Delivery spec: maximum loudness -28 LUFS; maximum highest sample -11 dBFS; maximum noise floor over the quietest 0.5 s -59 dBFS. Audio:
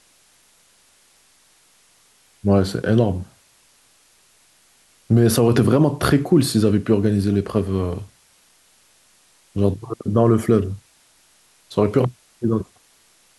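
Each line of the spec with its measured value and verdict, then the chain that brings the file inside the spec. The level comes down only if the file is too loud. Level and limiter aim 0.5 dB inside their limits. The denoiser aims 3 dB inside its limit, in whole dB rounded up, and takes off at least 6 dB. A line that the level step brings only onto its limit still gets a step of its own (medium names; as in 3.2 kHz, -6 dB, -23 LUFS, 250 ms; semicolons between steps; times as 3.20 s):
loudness -19.5 LUFS: fail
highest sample -5.5 dBFS: fail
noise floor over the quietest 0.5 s -57 dBFS: fail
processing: trim -9 dB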